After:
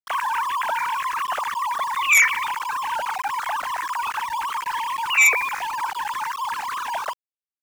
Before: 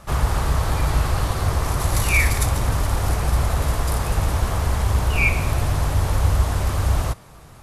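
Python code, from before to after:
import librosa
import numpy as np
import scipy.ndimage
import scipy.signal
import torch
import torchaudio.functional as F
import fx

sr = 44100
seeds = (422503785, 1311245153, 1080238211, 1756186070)

y = fx.sine_speech(x, sr)
y = fx.cheby_harmonics(y, sr, harmonics=(3, 5), levels_db=(-8, -8), full_scale_db=4.0)
y = np.where(np.abs(y) >= 10.0 ** (-25.5 / 20.0), y, 0.0)
y = F.gain(torch.from_numpy(y), -6.5).numpy()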